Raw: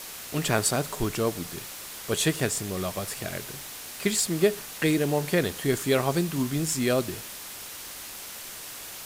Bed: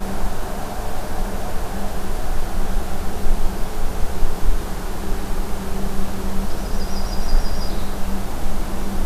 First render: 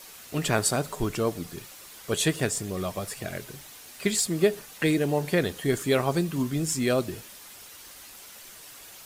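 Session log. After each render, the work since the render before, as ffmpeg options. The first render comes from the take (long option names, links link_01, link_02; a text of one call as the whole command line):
ffmpeg -i in.wav -af "afftdn=noise_reduction=8:noise_floor=-40" out.wav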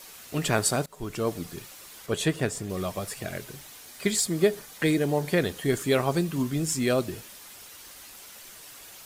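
ffmpeg -i in.wav -filter_complex "[0:a]asettb=1/sr,asplit=3[link_01][link_02][link_03];[link_01]atrim=end=2.064[link_04];[link_02]atrim=start=2.06:end=2.7,asetpts=PTS-STARTPTS,afade=type=in:duration=0.004:curve=qsin,afade=type=out:start_time=0.636:duration=0.004:curve=qsin,highshelf=frequency=3400:gain=-7[link_05];[link_03]atrim=start=2.696[link_06];[link_04][link_05]acrossfade=duration=0.004:curve1=hsin:curve2=qsin[link_07];[link_07][link_06]acrossfade=duration=0.004:curve1=qsin:curve2=hsin,asettb=1/sr,asplit=3[link_08][link_09][link_10];[link_08]atrim=end=3.854[link_11];[link_09]atrim=start=3.85:end=5.31,asetpts=PTS-STARTPTS,afade=type=in:duration=0.004:curve=qsin,afade=type=out:start_time=1.456:duration=0.004:curve=qsin,bandreject=frequency=2700:width=12[link_12];[link_10]atrim=start=5.306[link_13];[link_11][link_12]acrossfade=duration=0.004:curve1=hsin:curve2=qsin[link_14];[link_14][link_13]acrossfade=duration=0.004:curve1=qsin:curve2=hsin,asplit=2[link_15][link_16];[link_15]atrim=end=0.86,asetpts=PTS-STARTPTS,afade=type=out:start_time=0.856:duration=0.004:curve=hsin:silence=0.0749894[link_17];[link_16]atrim=start=0.86,asetpts=PTS-STARTPTS,afade=type=in:duration=0.46:silence=0.0749894[link_18];[link_17][link_18]concat=n=2:v=0:a=1" out.wav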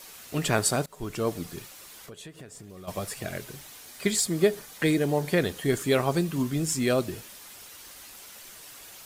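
ffmpeg -i in.wav -filter_complex "[0:a]asplit=3[link_01][link_02][link_03];[link_01]afade=type=out:start_time=1.67:duration=0.02[link_04];[link_02]acompressor=threshold=-42dB:ratio=6:attack=3.2:release=140:knee=1:detection=peak,afade=type=in:start_time=1.67:duration=0.02,afade=type=out:start_time=2.87:duration=0.02[link_05];[link_03]afade=type=in:start_time=2.87:duration=0.02[link_06];[link_04][link_05][link_06]amix=inputs=3:normalize=0" out.wav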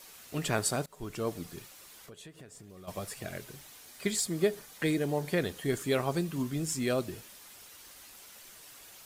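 ffmpeg -i in.wav -af "volume=-5.5dB" out.wav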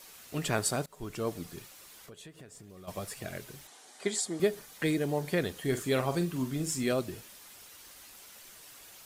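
ffmpeg -i in.wav -filter_complex "[0:a]asettb=1/sr,asplit=3[link_01][link_02][link_03];[link_01]atrim=end=3.674[link_04];[link_02]atrim=start=3.67:end=4.4,asetpts=PTS-STARTPTS,afade=type=in:duration=0.004:curve=qsin,afade=type=out:start_time=0.726:duration=0.004:curve=qsin,highpass=250,equalizer=frequency=400:width_type=q:width=4:gain=3,equalizer=frequency=780:width_type=q:width=4:gain=8,equalizer=frequency=2500:width_type=q:width=4:gain=-5,equalizer=frequency=4900:width_type=q:width=4:gain=-3,lowpass=frequency=9600:width=0.5412,lowpass=frequency=9600:width=1.3066[link_05];[link_03]atrim=start=4.396[link_06];[link_04][link_05]acrossfade=duration=0.004:curve1=hsin:curve2=qsin[link_07];[link_07][link_06]acrossfade=duration=0.004:curve1=qsin:curve2=hsin,asettb=1/sr,asplit=3[link_08][link_09][link_10];[link_08]atrim=end=5.604[link_11];[link_09]atrim=start=5.6:end=6.92,asetpts=PTS-STARTPTS,afade=type=in:duration=0.004:curve=qsin,afade=type=out:start_time=1.316:duration=0.004:curve=qsin,asplit=2[link_12][link_13];[link_13]adelay=46,volume=-9.5dB[link_14];[link_12][link_14]amix=inputs=2:normalize=0,atrim=end_sample=58212[link_15];[link_10]atrim=start=6.916[link_16];[link_11][link_15]acrossfade=duration=0.004:curve1=hsin:curve2=qsin[link_17];[link_17][link_16]acrossfade=duration=0.004:curve1=qsin:curve2=hsin" out.wav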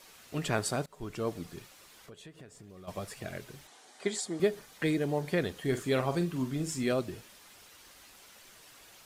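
ffmpeg -i in.wav -af "highshelf=frequency=7600:gain=-9" out.wav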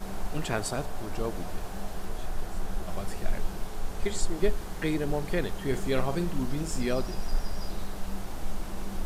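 ffmpeg -i in.wav -i bed.wav -filter_complex "[1:a]volume=-11.5dB[link_01];[0:a][link_01]amix=inputs=2:normalize=0" out.wav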